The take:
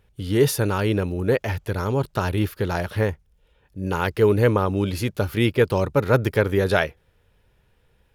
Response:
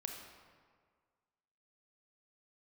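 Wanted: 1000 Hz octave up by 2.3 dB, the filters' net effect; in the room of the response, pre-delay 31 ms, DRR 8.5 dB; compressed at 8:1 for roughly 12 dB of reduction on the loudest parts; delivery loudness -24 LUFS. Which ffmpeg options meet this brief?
-filter_complex "[0:a]equalizer=f=1k:t=o:g=3,acompressor=threshold=-25dB:ratio=8,asplit=2[a][b];[1:a]atrim=start_sample=2205,adelay=31[c];[b][c]afir=irnorm=-1:irlink=0,volume=-7dB[d];[a][d]amix=inputs=2:normalize=0,volume=5.5dB"

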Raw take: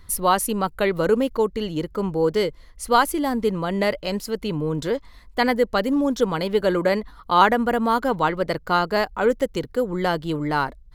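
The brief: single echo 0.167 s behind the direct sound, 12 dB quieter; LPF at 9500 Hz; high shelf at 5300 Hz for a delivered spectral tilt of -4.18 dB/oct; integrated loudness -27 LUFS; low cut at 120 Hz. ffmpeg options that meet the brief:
-af "highpass=120,lowpass=9.5k,highshelf=f=5.3k:g=-6.5,aecho=1:1:167:0.251,volume=-4.5dB"

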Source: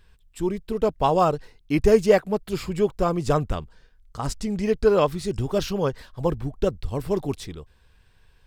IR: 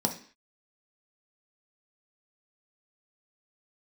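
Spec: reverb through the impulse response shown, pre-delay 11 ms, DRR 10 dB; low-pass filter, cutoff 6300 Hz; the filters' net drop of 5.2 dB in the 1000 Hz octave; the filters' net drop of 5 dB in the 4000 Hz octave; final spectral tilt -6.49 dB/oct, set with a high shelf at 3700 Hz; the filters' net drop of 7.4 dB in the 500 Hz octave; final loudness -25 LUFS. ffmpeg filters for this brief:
-filter_complex "[0:a]lowpass=6.3k,equalizer=f=500:t=o:g=-8.5,equalizer=f=1k:t=o:g=-3.5,highshelf=f=3.7k:g=4,equalizer=f=4k:t=o:g=-8.5,asplit=2[a][b];[1:a]atrim=start_sample=2205,adelay=11[c];[b][c]afir=irnorm=-1:irlink=0,volume=-17.5dB[d];[a][d]amix=inputs=2:normalize=0,volume=1.5dB"

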